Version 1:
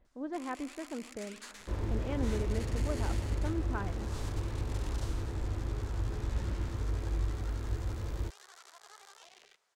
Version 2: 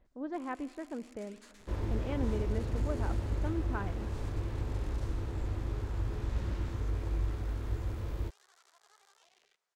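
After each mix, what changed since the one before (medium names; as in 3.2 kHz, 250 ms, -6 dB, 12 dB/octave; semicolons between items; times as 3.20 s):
first sound -10.0 dB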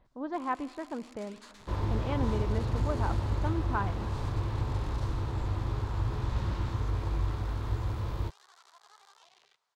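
master: add graphic EQ 125/1000/4000 Hz +8/+10/+7 dB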